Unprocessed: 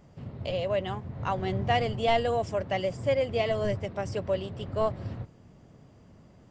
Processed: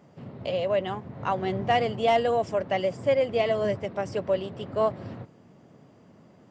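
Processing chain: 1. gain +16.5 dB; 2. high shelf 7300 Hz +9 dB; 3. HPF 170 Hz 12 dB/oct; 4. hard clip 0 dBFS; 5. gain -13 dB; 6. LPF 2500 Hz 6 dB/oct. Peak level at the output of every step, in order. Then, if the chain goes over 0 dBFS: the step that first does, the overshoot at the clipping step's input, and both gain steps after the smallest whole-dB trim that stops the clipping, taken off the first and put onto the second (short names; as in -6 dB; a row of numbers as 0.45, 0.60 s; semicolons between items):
+4.5, +4.5, +4.0, 0.0, -13.0, -13.0 dBFS; step 1, 4.0 dB; step 1 +12.5 dB, step 5 -9 dB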